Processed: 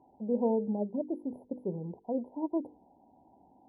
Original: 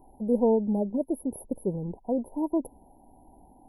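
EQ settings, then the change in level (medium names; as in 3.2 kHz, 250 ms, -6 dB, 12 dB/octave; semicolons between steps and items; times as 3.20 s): high-pass 120 Hz 12 dB/octave; low-pass 4.9 kHz 24 dB/octave; hum notches 50/100/150/200/250/300/350/400/450/500 Hz; -4.5 dB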